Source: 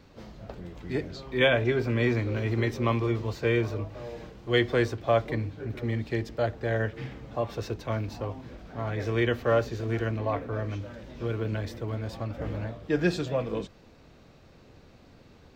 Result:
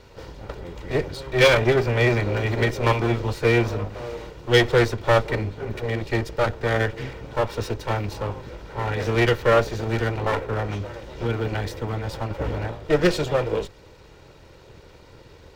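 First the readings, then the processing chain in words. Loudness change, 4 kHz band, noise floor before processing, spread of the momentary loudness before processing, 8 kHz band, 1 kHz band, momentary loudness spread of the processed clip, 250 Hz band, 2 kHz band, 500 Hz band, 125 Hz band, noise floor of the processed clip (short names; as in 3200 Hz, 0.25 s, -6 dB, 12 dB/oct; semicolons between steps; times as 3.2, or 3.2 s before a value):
+6.0 dB, +8.0 dB, -55 dBFS, 14 LU, n/a, +8.0 dB, 14 LU, +3.5 dB, +7.0 dB, +6.5 dB, +5.0 dB, -49 dBFS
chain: minimum comb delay 2.1 ms; gain +8 dB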